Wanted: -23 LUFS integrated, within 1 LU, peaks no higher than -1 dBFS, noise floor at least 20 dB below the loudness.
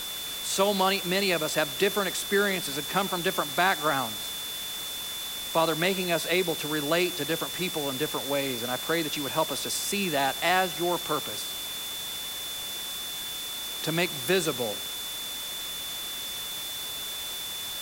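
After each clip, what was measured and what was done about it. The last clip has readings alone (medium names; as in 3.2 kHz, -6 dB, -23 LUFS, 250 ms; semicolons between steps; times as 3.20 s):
steady tone 3.5 kHz; tone level -35 dBFS; noise floor -35 dBFS; noise floor target -48 dBFS; loudness -28.0 LUFS; peak level -12.5 dBFS; loudness target -23.0 LUFS
-> band-stop 3.5 kHz, Q 30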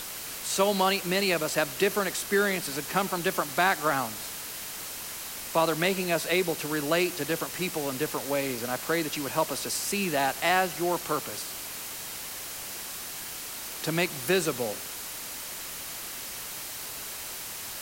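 steady tone not found; noise floor -38 dBFS; noise floor target -49 dBFS
-> noise print and reduce 11 dB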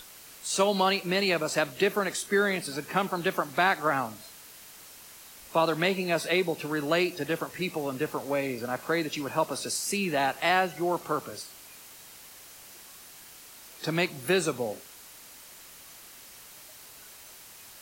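noise floor -49 dBFS; loudness -28.0 LUFS; peak level -13.5 dBFS; loudness target -23.0 LUFS
-> trim +5 dB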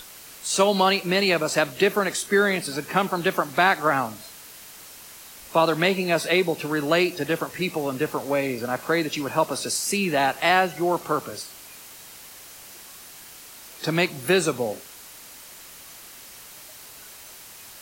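loudness -23.0 LUFS; peak level -8.5 dBFS; noise floor -44 dBFS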